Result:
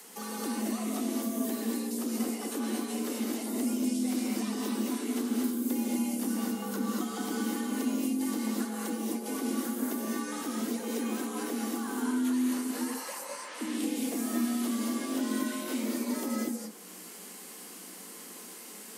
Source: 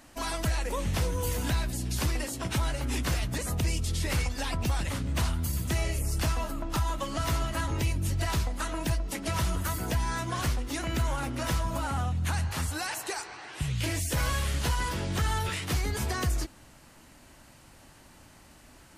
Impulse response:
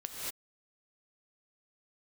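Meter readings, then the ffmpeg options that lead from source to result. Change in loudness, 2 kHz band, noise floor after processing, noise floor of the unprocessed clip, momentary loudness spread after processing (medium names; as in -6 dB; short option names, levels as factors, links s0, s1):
-1.5 dB, -7.0 dB, -46 dBFS, -54 dBFS, 13 LU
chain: -filter_complex "[0:a]afreqshift=170,aemphasis=mode=production:type=75kf,acrossover=split=280|1300[s0][s1][s2];[s0]acompressor=threshold=0.02:ratio=4[s3];[s1]acompressor=threshold=0.00708:ratio=4[s4];[s2]acompressor=threshold=0.00447:ratio=4[s5];[s3][s4][s5]amix=inputs=3:normalize=0[s6];[1:a]atrim=start_sample=2205[s7];[s6][s7]afir=irnorm=-1:irlink=0,volume=1.26"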